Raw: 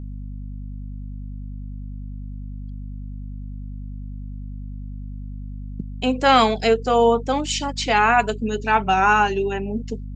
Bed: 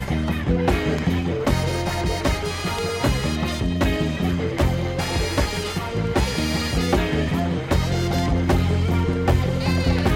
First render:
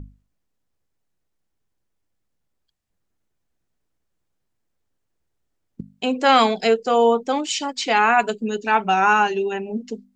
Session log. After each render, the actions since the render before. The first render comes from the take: hum notches 50/100/150/200/250 Hz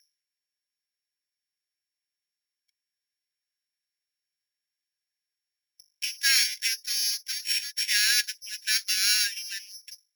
sorted samples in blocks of 8 samples; rippled Chebyshev high-pass 1.6 kHz, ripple 3 dB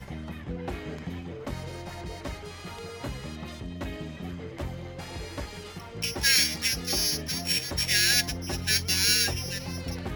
add bed -15 dB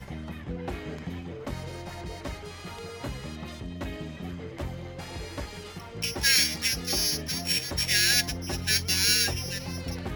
no audible change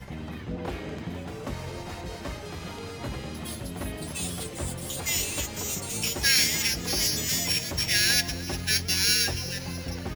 feedback delay 302 ms, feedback 58%, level -18 dB; ever faster or slower copies 111 ms, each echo +4 st, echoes 3, each echo -6 dB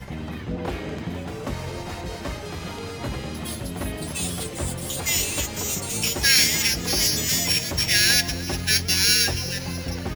trim +4.5 dB; peak limiter -1 dBFS, peak gain reduction 1 dB

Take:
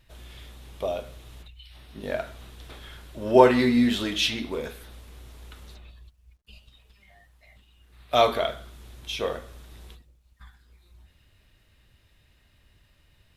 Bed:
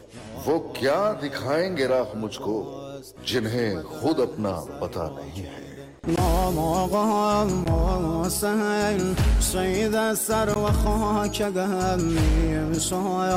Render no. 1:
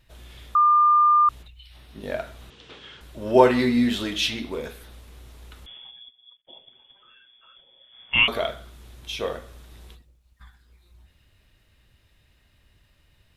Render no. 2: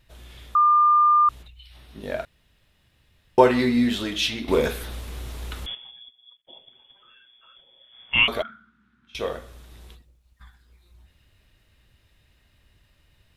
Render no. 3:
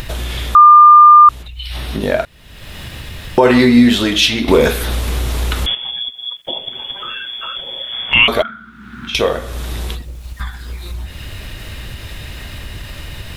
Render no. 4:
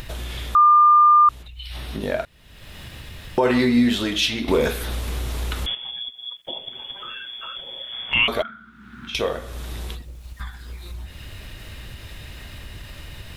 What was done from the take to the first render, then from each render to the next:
0.55–1.29 s: bleep 1.2 kHz -13.5 dBFS; 2.50–3.01 s: cabinet simulation 140–6500 Hz, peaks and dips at 460 Hz +5 dB, 670 Hz -6 dB, 2.9 kHz +7 dB; 5.66–8.28 s: frequency inversion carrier 3.4 kHz
2.25–3.38 s: room tone; 4.48–5.75 s: gain +11 dB; 8.42–9.15 s: two resonant band-passes 560 Hz, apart 2.7 oct
upward compressor, threshold -24 dBFS; loudness maximiser +12.5 dB
trim -8.5 dB

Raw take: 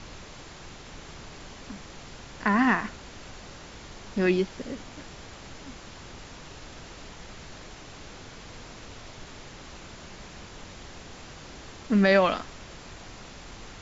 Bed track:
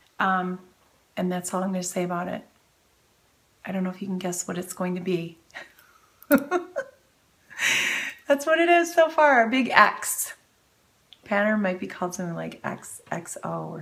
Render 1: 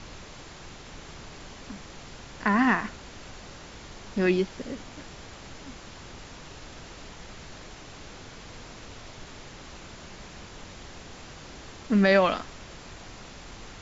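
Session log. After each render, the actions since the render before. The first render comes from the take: no audible change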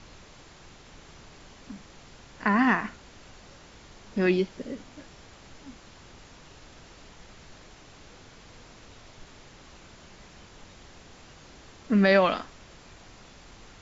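noise print and reduce 6 dB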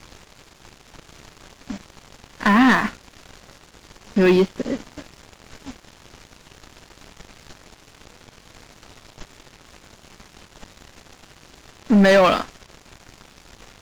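waveshaping leveller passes 3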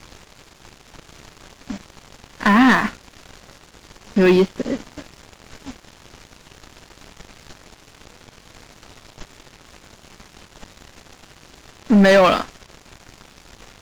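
trim +1.5 dB

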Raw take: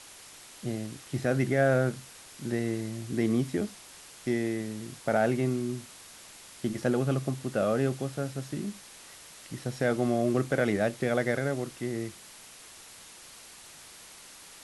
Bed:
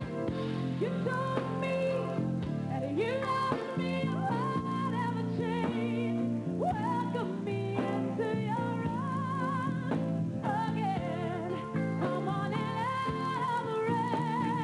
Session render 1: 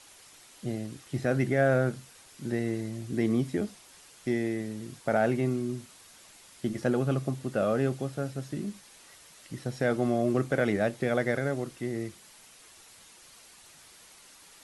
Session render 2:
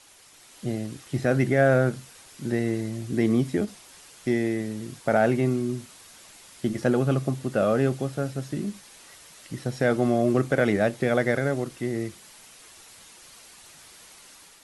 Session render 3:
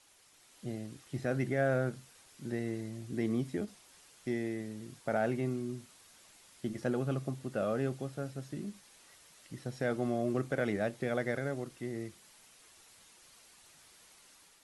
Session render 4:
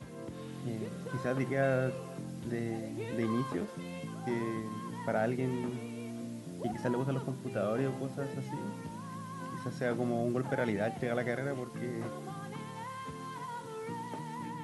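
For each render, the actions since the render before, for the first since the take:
noise reduction 6 dB, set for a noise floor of -50 dBFS
level rider gain up to 4.5 dB; endings held to a fixed fall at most 490 dB/s
trim -10.5 dB
add bed -10 dB

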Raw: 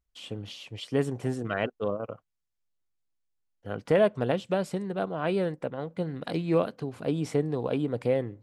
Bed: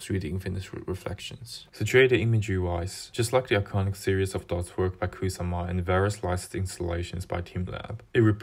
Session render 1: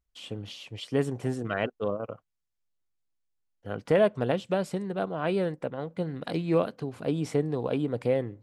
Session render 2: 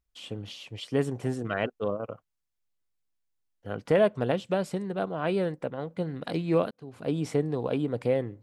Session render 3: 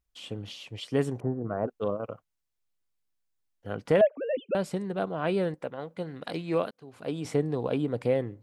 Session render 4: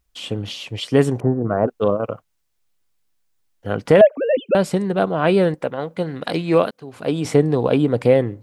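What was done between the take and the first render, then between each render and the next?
no audible change
6.71–7.13 s: fade in
1.20–1.68 s: low-pass 1.1 kHz 24 dB/octave; 4.01–4.55 s: formants replaced by sine waves; 5.54–7.25 s: bass shelf 350 Hz -7.5 dB
trim +11.5 dB; peak limiter -2 dBFS, peak gain reduction 2 dB

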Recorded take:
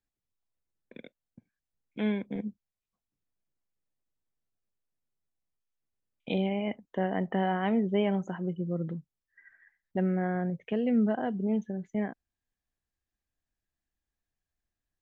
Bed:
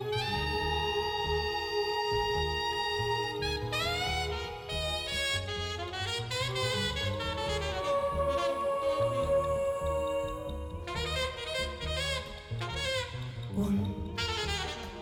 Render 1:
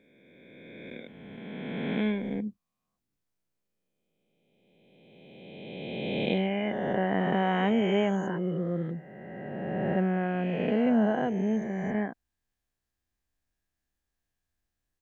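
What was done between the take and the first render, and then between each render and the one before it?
reverse spectral sustain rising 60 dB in 2.43 s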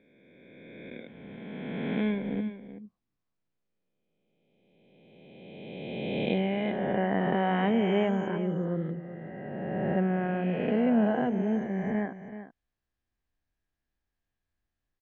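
distance through air 150 m; delay 379 ms -12 dB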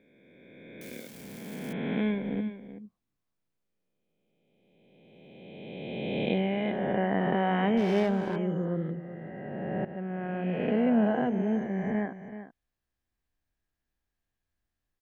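0.81–1.73 s: zero-crossing glitches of -37 dBFS; 7.77–8.36 s: sliding maximum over 5 samples; 9.85–10.63 s: fade in, from -16 dB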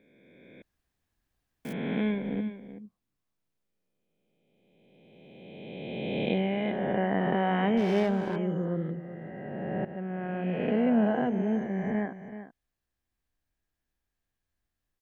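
0.62–1.65 s: room tone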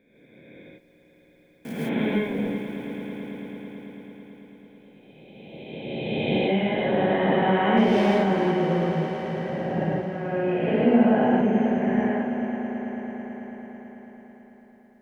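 echo with a slow build-up 110 ms, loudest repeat 5, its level -15 dB; gated-style reverb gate 180 ms rising, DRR -5.5 dB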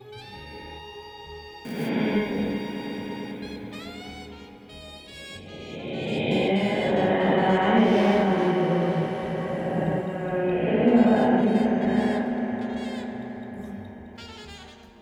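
add bed -10 dB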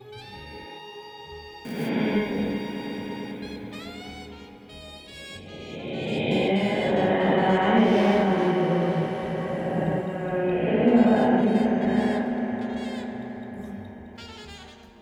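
0.64–1.30 s: high-pass 200 Hz -> 89 Hz 24 dB/octave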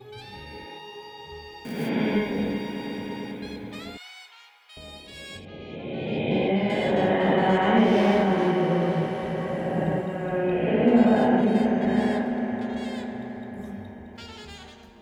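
3.97–4.77 s: high-pass 1 kHz 24 dB/octave; 5.45–6.70 s: distance through air 230 m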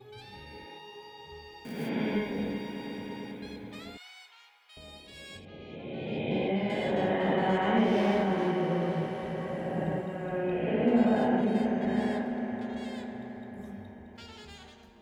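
trim -6 dB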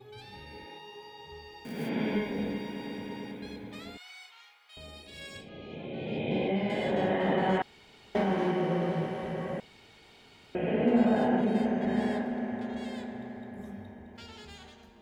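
4.04–5.87 s: doubling 38 ms -4 dB; 7.62–8.15 s: room tone; 9.60–10.55 s: room tone

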